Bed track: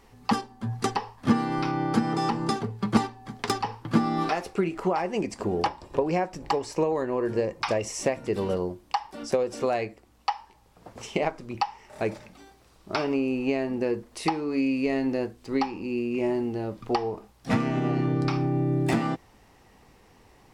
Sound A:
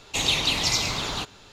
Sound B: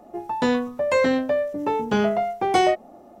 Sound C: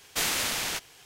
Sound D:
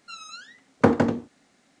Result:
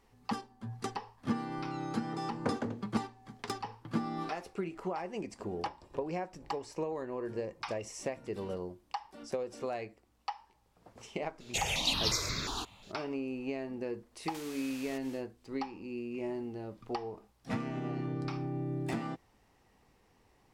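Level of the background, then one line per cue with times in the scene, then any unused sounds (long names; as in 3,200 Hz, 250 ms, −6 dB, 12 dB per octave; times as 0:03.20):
bed track −11 dB
0:01.62: mix in D −16 dB
0:11.40: mix in A −4.5 dB + step-sequenced phaser 5.6 Hz 290–3,000 Hz
0:14.19: mix in C −3.5 dB, fades 0.10 s + downward compressor 5 to 1, threshold −45 dBFS
not used: B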